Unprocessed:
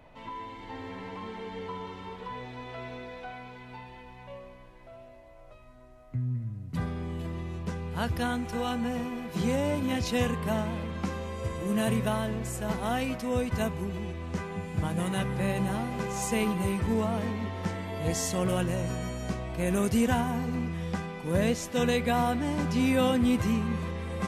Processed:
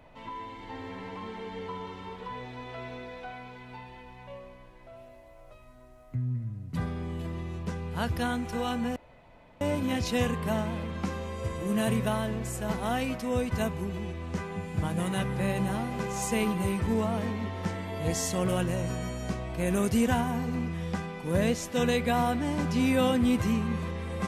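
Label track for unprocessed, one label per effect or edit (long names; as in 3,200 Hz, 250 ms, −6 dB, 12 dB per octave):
4.960000	6.150000	high-shelf EQ 9,000 Hz +9 dB
8.960000	9.610000	fill with room tone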